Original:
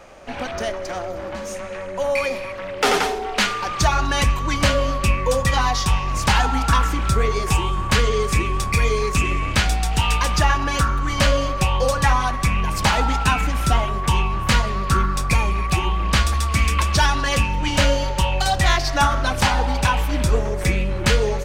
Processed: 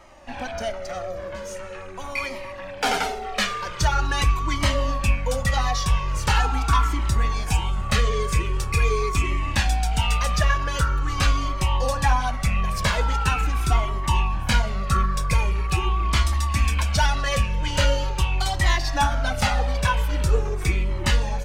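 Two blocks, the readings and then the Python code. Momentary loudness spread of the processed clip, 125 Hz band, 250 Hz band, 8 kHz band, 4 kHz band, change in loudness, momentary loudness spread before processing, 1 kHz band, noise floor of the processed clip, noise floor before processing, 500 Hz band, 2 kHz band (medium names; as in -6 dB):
8 LU, -2.0 dB, -6.0 dB, -4.5 dB, -4.0 dB, -3.0 dB, 4 LU, -4.0 dB, -35 dBFS, -30 dBFS, -6.0 dB, -4.0 dB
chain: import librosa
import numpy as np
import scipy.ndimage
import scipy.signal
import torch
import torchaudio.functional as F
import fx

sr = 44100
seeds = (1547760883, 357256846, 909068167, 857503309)

y = fx.comb_cascade(x, sr, direction='falling', hz=0.43)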